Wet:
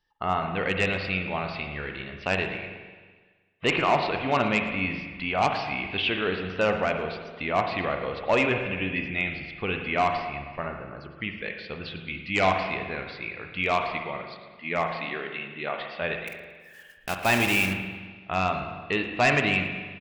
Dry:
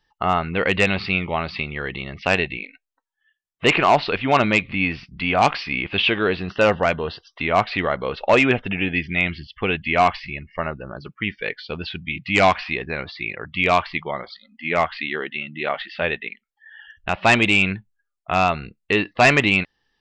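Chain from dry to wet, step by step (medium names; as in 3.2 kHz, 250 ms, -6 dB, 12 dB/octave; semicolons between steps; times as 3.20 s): 16.27–17.74 s: block-companded coder 3-bit; frequency-shifting echo 113 ms, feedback 34%, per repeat -32 Hz, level -18.5 dB; spring tank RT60 1.5 s, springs 42/54 ms, chirp 55 ms, DRR 4.5 dB; trim -7.5 dB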